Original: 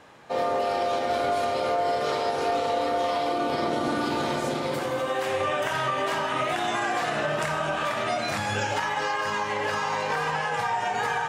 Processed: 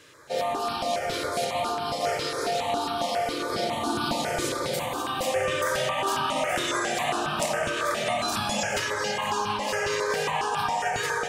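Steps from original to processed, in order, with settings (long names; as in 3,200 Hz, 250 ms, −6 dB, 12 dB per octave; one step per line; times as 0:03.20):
high-shelf EQ 3,200 Hz +10.5 dB
feedback echo with a low-pass in the loop 178 ms, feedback 77%, low-pass 1,500 Hz, level −4 dB
step-sequenced phaser 7.3 Hz 210–2,000 Hz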